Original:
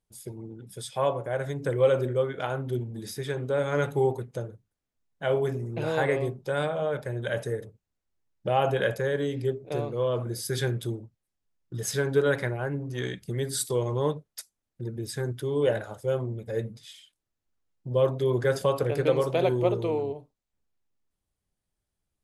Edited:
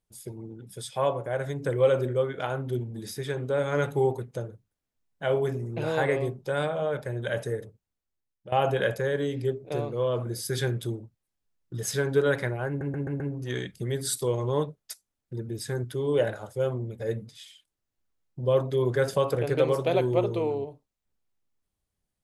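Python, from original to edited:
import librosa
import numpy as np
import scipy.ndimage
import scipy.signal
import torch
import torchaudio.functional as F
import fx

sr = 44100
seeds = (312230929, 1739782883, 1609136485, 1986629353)

y = fx.edit(x, sr, fx.fade_out_to(start_s=7.59, length_s=0.93, floor_db=-16.5),
    fx.stutter(start_s=12.68, slice_s=0.13, count=5), tone=tone)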